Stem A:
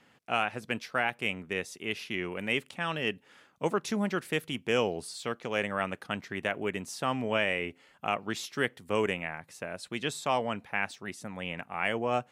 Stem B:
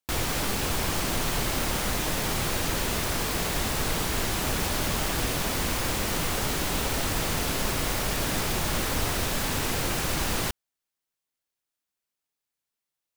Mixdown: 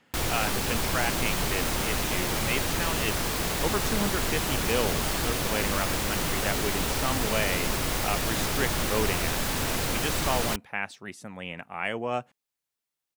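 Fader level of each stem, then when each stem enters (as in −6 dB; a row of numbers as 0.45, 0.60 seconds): −0.5, −0.5 decibels; 0.00, 0.05 seconds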